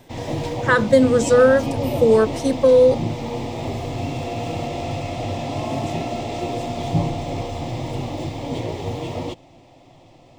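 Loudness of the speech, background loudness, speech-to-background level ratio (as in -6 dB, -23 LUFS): -16.5 LUFS, -26.5 LUFS, 10.0 dB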